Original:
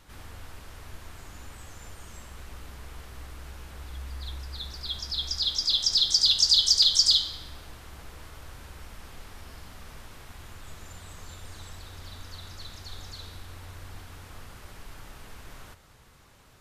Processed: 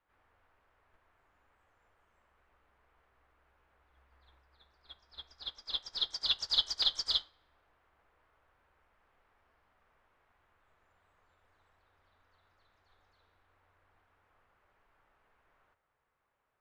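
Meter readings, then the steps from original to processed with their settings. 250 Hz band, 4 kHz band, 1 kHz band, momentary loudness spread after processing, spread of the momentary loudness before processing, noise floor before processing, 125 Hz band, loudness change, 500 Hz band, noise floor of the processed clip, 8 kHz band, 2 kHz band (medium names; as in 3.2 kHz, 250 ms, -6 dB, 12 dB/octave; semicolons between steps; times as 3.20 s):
under -15 dB, -11.0 dB, -9.5 dB, 20 LU, 21 LU, -55 dBFS, under -25 dB, -10.5 dB, -11.5 dB, -81 dBFS, -22.0 dB, -9.5 dB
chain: three-band isolator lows -14 dB, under 420 Hz, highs -22 dB, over 2.4 kHz; upward expansion 2.5:1, over -50 dBFS; trim +8 dB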